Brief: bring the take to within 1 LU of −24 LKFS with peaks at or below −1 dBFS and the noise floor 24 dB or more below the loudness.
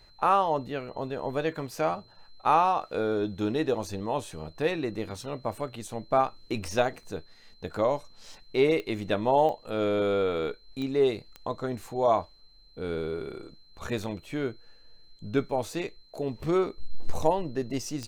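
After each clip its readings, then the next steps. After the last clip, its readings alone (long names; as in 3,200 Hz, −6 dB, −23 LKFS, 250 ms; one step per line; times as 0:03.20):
number of clicks 5; interfering tone 4,100 Hz; level of the tone −58 dBFS; integrated loudness −29.0 LKFS; sample peak −10.0 dBFS; target loudness −24.0 LKFS
→ click removal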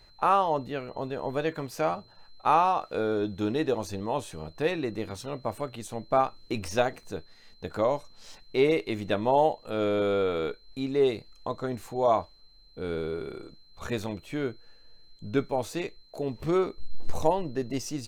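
number of clicks 0; interfering tone 4,100 Hz; level of the tone −58 dBFS
→ notch filter 4,100 Hz, Q 30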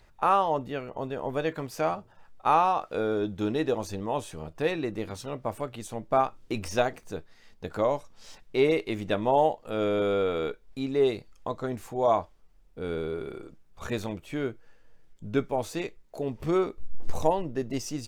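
interfering tone none found; integrated loudness −29.0 LKFS; sample peak −10.0 dBFS; target loudness −24.0 LKFS
→ level +5 dB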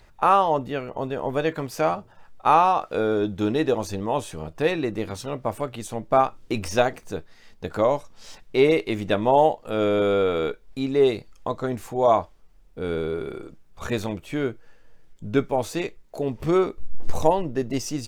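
integrated loudness −24.0 LKFS; sample peak −5.0 dBFS; background noise floor −53 dBFS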